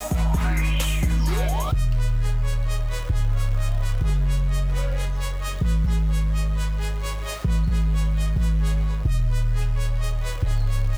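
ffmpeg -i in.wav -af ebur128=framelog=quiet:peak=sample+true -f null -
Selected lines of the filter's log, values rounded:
Integrated loudness:
  I:         -24.5 LUFS
  Threshold: -34.5 LUFS
Loudness range:
  LRA:         1.2 LU
  Threshold: -44.6 LUFS
  LRA low:   -25.3 LUFS
  LRA high:  -24.1 LUFS
Sample peak:
  Peak:      -12.7 dBFS
True peak:
  Peak:      -12.5 dBFS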